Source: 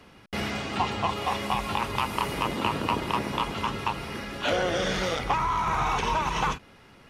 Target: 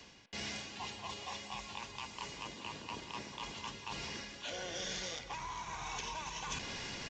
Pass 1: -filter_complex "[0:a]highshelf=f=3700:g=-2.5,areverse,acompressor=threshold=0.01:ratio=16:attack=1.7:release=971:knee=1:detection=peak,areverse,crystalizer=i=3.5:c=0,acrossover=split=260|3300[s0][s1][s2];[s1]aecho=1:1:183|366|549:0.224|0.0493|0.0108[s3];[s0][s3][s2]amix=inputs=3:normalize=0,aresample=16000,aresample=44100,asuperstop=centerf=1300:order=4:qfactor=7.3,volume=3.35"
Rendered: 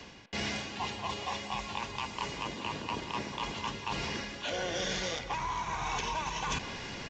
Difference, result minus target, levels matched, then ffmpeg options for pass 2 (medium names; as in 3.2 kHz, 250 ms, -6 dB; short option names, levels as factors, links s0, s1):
compression: peak gain reduction -9.5 dB; 8 kHz band -4.0 dB
-filter_complex "[0:a]highshelf=f=3700:g=6,areverse,acompressor=threshold=0.00355:ratio=16:attack=1.7:release=971:knee=1:detection=peak,areverse,crystalizer=i=3.5:c=0,acrossover=split=260|3300[s0][s1][s2];[s1]aecho=1:1:183|366|549:0.224|0.0493|0.0108[s3];[s0][s3][s2]amix=inputs=3:normalize=0,aresample=16000,aresample=44100,asuperstop=centerf=1300:order=4:qfactor=7.3,volume=3.35"